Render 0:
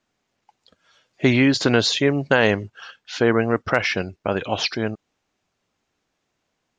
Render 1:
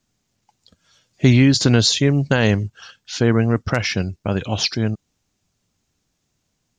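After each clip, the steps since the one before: tone controls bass +14 dB, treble +13 dB; gain -3.5 dB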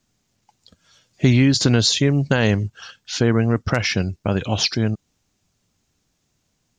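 compressor 1.5:1, threshold -20 dBFS, peak gain reduction 4.5 dB; gain +2 dB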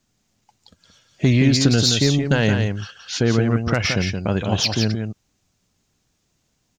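soft clip -6.5 dBFS, distortion -22 dB; echo 0.173 s -6 dB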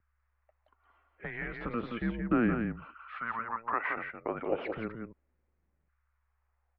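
LFO high-pass saw down 0.34 Hz 350–1600 Hz; hum 60 Hz, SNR 26 dB; mistuned SSB -230 Hz 290–2300 Hz; gain -9 dB

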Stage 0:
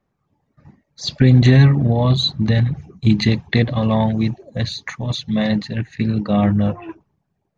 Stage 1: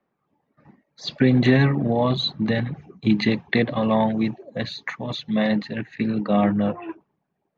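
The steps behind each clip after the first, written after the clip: three-band isolator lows -18 dB, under 180 Hz, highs -15 dB, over 3700 Hz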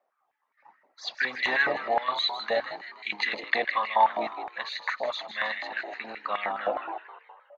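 frequency-shifting echo 0.158 s, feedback 52%, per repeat +62 Hz, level -10.5 dB; stepped high-pass 9.6 Hz 650–2000 Hz; gain -4.5 dB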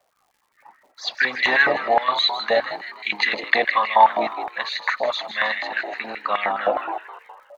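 crackle 220/s -59 dBFS; gain +7.5 dB

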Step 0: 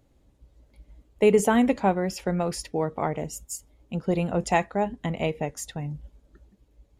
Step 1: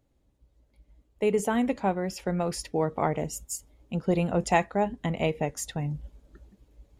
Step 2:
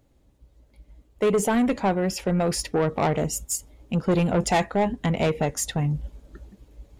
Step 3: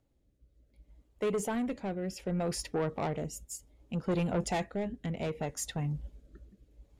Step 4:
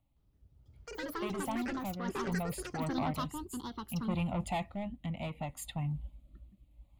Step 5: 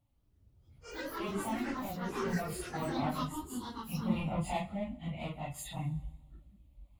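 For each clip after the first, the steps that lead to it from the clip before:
vocal rider within 5 dB 2 s; gain -2.5 dB
soft clip -24 dBFS, distortion -10 dB; gain +8 dB
rotary speaker horn 0.65 Hz; gain -8.5 dB
fixed phaser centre 1600 Hz, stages 6; echoes that change speed 0.166 s, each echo +7 st, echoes 2
phase scrambler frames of 0.1 s; plate-style reverb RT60 1.4 s, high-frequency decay 0.85×, DRR 17 dB

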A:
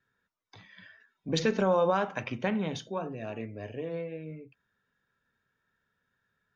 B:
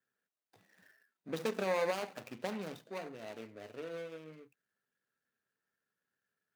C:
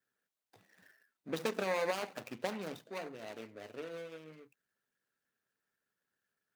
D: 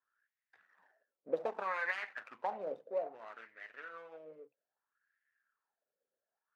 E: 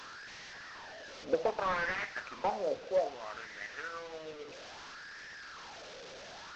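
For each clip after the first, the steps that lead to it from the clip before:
median filter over 41 samples; HPF 420 Hz 6 dB/oct; tilt +1.5 dB/oct; gain -1.5 dB
harmonic-percussive split harmonic -5 dB; gain +3 dB
wah 0.62 Hz 510–1900 Hz, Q 6.4; gain +11.5 dB
delta modulation 32 kbps, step -48.5 dBFS; gain +6.5 dB

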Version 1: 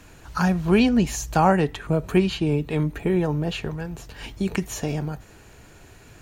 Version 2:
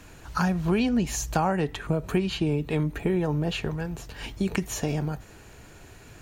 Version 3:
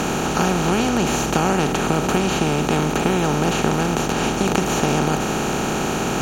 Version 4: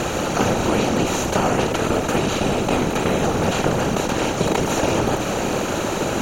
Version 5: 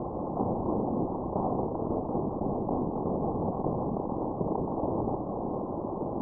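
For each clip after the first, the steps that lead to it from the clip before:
compressor 4:1, threshold -21 dBFS, peak gain reduction 8 dB
per-bin compression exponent 0.2; gain -1 dB
small resonant body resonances 540/2000/3900 Hz, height 10 dB, ringing for 45 ms; whisperiser; gain -1.5 dB
rippled Chebyshev low-pass 1100 Hz, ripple 3 dB; gain -8.5 dB

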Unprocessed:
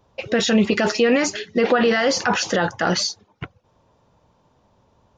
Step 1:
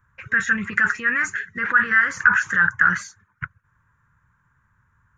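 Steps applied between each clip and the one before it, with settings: EQ curve 140 Hz 0 dB, 250 Hz -15 dB, 730 Hz -27 dB, 1000 Hz -4 dB, 1600 Hz +14 dB, 2900 Hz -14 dB, 4800 Hz -23 dB, 7200 Hz -3 dB; gain -1 dB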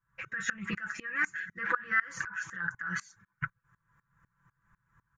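comb 6 ms, depth 80%; compressor 5:1, threshold -21 dBFS, peak gain reduction 13 dB; dB-ramp tremolo swelling 4 Hz, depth 23 dB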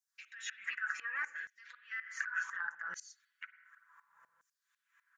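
compressor 2.5:1, threshold -46 dBFS, peak gain reduction 16 dB; spring tank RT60 1.2 s, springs 45/53 ms, chirp 50 ms, DRR 15.5 dB; LFO high-pass saw down 0.68 Hz 520–6000 Hz; gain +2.5 dB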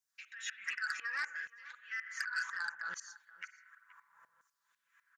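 echo 0.477 s -19 dB; core saturation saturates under 4000 Hz; gain +1.5 dB

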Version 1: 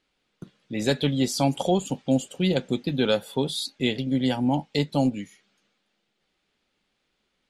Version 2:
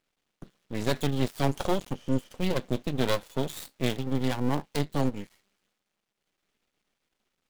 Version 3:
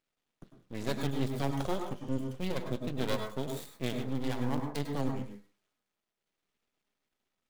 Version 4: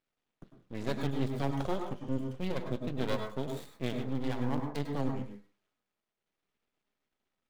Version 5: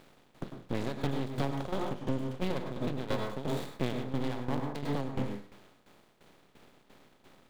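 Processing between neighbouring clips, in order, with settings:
switching dead time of 0.099 ms; spectral repair 1.98–2.26, 400–6800 Hz after; half-wave rectifier
reverb RT60 0.35 s, pre-delay 92 ms, DRR 4 dB; gain -7 dB
high shelf 5200 Hz -9.5 dB
per-bin compression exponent 0.6; compressor, threshold -30 dBFS, peak gain reduction 7.5 dB; tremolo saw down 2.9 Hz, depth 75%; gain +5.5 dB

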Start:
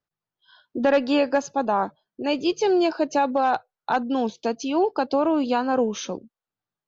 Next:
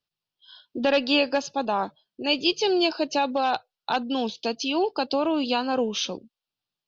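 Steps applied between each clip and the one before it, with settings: band shelf 3700 Hz +11.5 dB 1.3 oct; gain -3 dB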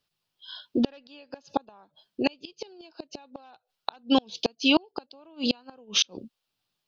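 flipped gate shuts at -16 dBFS, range -35 dB; gain +7 dB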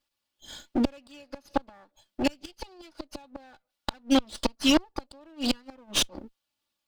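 minimum comb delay 3.5 ms

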